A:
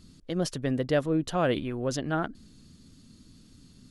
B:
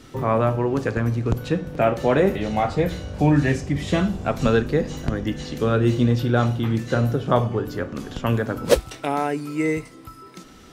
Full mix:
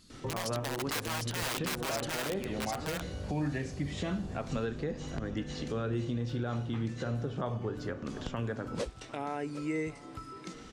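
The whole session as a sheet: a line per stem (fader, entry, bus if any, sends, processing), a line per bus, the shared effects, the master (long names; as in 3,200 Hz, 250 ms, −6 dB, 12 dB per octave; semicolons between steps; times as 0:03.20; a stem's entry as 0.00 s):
+0.5 dB, 0.00 s, no send, echo send −4 dB, wrap-around overflow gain 22.5 dB; low-shelf EQ 430 Hz −11.5 dB
−2.5 dB, 0.10 s, no send, echo send −20.5 dB, low-pass filter 8,900 Hz 24 dB per octave; downward compressor 2 to 1, threshold −35 dBFS, peak gain reduction 14 dB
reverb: not used
echo: single-tap delay 752 ms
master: brickwall limiter −24 dBFS, peak gain reduction 9.5 dB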